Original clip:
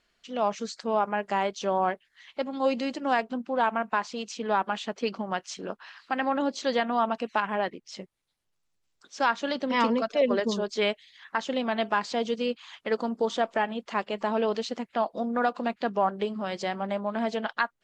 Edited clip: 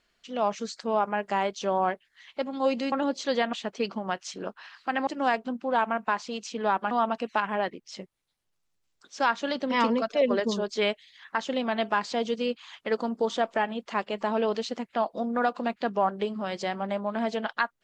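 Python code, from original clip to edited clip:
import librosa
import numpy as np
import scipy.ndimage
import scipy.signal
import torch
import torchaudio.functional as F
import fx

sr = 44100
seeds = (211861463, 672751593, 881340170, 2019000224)

y = fx.edit(x, sr, fx.swap(start_s=2.92, length_s=1.84, other_s=6.3, other_length_s=0.61), tone=tone)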